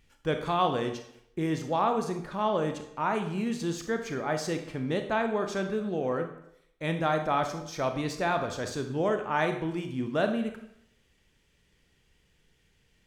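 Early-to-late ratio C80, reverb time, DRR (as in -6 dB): 11.5 dB, 0.75 s, 6.0 dB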